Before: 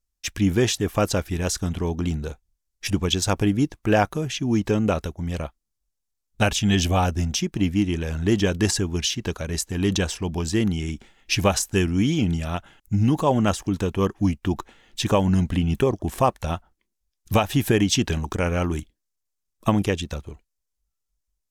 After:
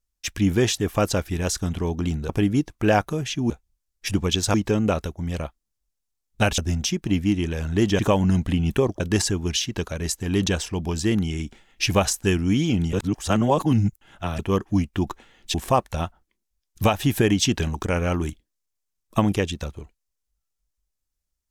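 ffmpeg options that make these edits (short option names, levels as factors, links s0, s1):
-filter_complex "[0:a]asplit=10[s0][s1][s2][s3][s4][s5][s6][s7][s8][s9];[s0]atrim=end=2.292[s10];[s1]atrim=start=3.328:end=4.542[s11];[s2]atrim=start=2.288:end=3.332[s12];[s3]atrim=start=4.538:end=6.582[s13];[s4]atrim=start=7.078:end=8.492[s14];[s5]atrim=start=15.028:end=16.042[s15];[s6]atrim=start=8.488:end=12.422[s16];[s7]atrim=start=12.418:end=13.882,asetpts=PTS-STARTPTS,areverse[s17];[s8]atrim=start=13.878:end=15.032[s18];[s9]atrim=start=16.038[s19];[s10][s11]acrossfade=d=0.004:c1=hsin:c2=hsin[s20];[s20][s12]acrossfade=d=0.004:c1=hsin:c2=hsin[s21];[s21][s13]acrossfade=d=0.004:c1=hsin:c2=hsin[s22];[s22][s14]acrossfade=d=0.004:c1=hsin:c2=hsin[s23];[s23][s15]acrossfade=d=0.004:c1=hsin:c2=hsin[s24];[s24][s16]acrossfade=d=0.004:c1=hsin:c2=hsin[s25];[s25][s17]acrossfade=d=0.004:c1=hsin:c2=hsin[s26];[s26][s18]acrossfade=d=0.004:c1=hsin:c2=hsin[s27];[s27][s19]acrossfade=d=0.004:c1=hsin:c2=hsin"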